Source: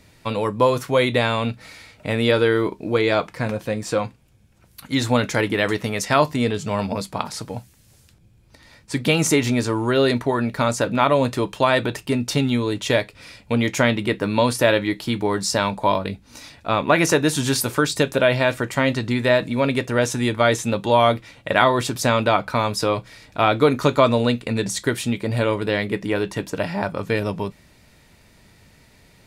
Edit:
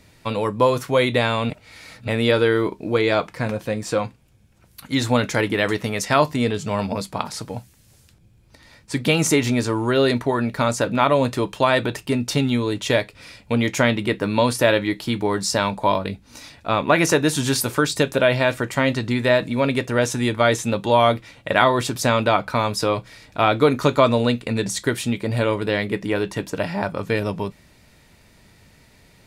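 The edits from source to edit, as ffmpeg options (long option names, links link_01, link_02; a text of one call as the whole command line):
ffmpeg -i in.wav -filter_complex "[0:a]asplit=3[link_01][link_02][link_03];[link_01]atrim=end=1.502[link_04];[link_02]atrim=start=1.498:end=2.082,asetpts=PTS-STARTPTS,areverse[link_05];[link_03]atrim=start=2.078[link_06];[link_04][link_05]acrossfade=duration=0.004:curve1=hsin:curve2=hsin[link_07];[link_07][link_06]acrossfade=duration=0.004:curve1=hsin:curve2=hsin" out.wav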